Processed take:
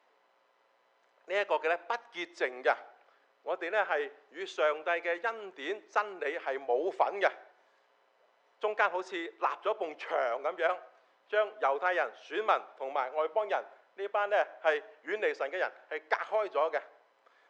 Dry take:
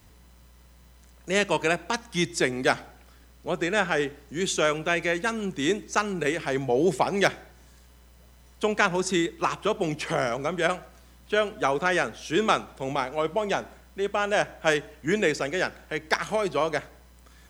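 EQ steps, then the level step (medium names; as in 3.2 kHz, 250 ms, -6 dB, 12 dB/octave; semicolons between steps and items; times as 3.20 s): high-pass 500 Hz 24 dB/octave; tape spacing loss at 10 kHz 37 dB; 0.0 dB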